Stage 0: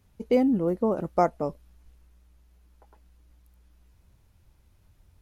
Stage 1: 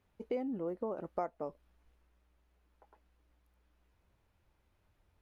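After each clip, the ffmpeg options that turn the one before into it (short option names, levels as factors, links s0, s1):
-af "bass=f=250:g=-10,treble=f=4000:g=-11,acompressor=threshold=0.0251:ratio=2.5,volume=0.596"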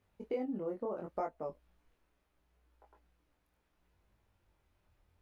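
-af "flanger=delay=19:depth=7:speed=0.71,volume=1.33"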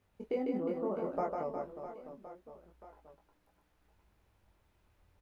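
-af "aecho=1:1:150|360|654|1066|1642:0.631|0.398|0.251|0.158|0.1,volume=1.19"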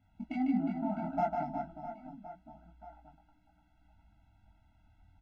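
-af "aexciter=amount=2.7:drive=4:freq=2700,adynamicsmooth=sensitivity=4.5:basefreq=2300,afftfilt=real='re*eq(mod(floor(b*sr/1024/320),2),0)':imag='im*eq(mod(floor(b*sr/1024/320),2),0)':win_size=1024:overlap=0.75,volume=2.11"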